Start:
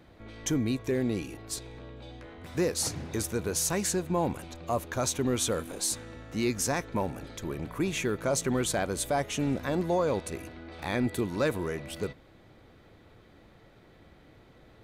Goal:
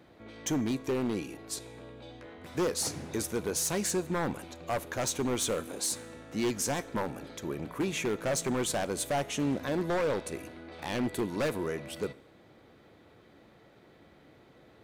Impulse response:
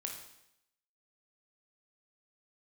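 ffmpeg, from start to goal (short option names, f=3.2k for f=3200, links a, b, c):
-filter_complex "[0:a]highpass=f=330:p=1,lowshelf=f=480:g=6.5,aeval=exprs='0.0794*(abs(mod(val(0)/0.0794+3,4)-2)-1)':c=same,asplit=2[a][b];[1:a]atrim=start_sample=2205,adelay=14[c];[b][c]afir=irnorm=-1:irlink=0,volume=-15.5dB[d];[a][d]amix=inputs=2:normalize=0,volume=-1.5dB"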